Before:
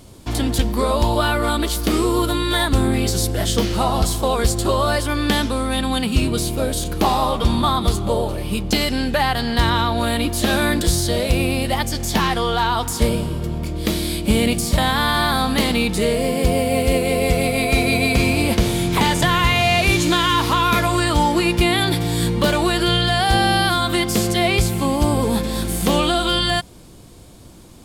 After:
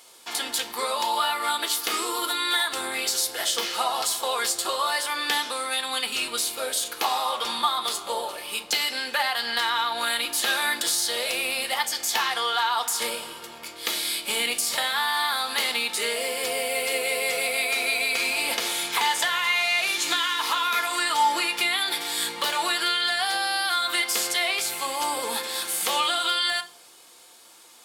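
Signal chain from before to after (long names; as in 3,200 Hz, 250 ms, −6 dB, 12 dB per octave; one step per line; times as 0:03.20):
high-pass filter 1,000 Hz 12 dB per octave
downward compressor, threshold −21 dBFS, peak gain reduction 6 dB
convolution reverb RT60 0.50 s, pre-delay 4 ms, DRR 7.5 dB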